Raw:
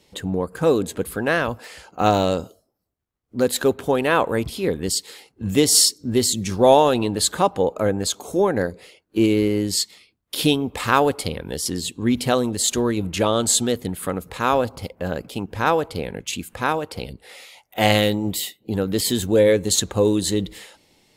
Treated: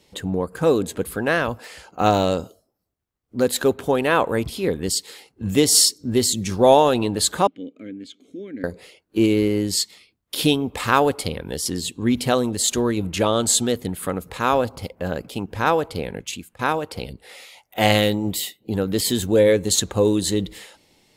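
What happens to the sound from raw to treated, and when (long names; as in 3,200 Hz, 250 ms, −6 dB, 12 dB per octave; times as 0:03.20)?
0:07.47–0:08.64: formant filter i
0:16.19–0:16.59: fade out, to −20 dB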